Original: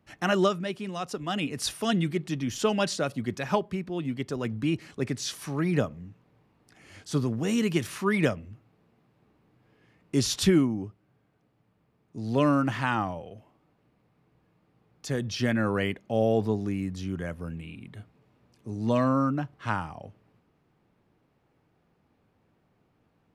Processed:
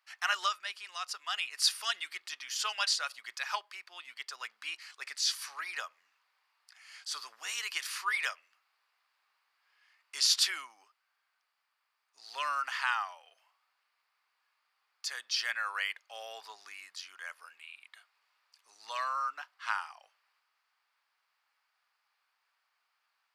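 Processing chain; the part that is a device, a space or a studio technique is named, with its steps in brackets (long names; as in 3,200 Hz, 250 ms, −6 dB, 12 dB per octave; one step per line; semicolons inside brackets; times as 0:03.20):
headphones lying on a table (high-pass filter 1,100 Hz 24 dB per octave; parametric band 4,700 Hz +9 dB 0.27 octaves)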